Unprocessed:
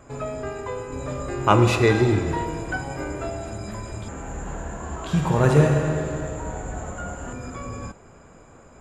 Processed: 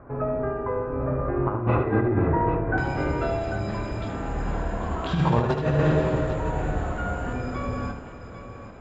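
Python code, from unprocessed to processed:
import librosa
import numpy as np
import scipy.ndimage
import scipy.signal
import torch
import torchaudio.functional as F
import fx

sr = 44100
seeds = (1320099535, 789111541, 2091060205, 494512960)

y = fx.lowpass(x, sr, hz=fx.steps((0.0, 1600.0), (2.78, 4800.0)), slope=24)
y = fx.over_compress(y, sr, threshold_db=-21.0, ratio=-0.5)
y = fx.echo_multitap(y, sr, ms=(76, 203, 510, 795), db=(-6.5, -17.5, -16.5, -10.5))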